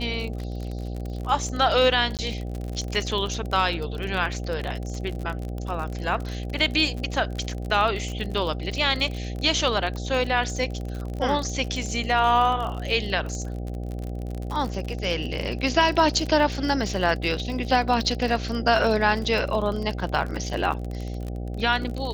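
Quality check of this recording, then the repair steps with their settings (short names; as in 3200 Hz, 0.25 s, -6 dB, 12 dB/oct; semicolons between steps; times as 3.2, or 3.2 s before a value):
buzz 60 Hz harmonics 13 -31 dBFS
crackle 46/s -29 dBFS
2.17–2.19 gap 18 ms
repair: de-click; de-hum 60 Hz, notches 13; interpolate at 2.17, 18 ms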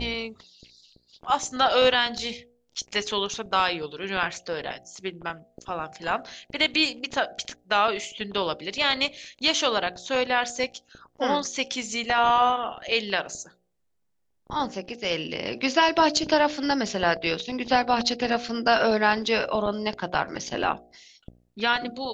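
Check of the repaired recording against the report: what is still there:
none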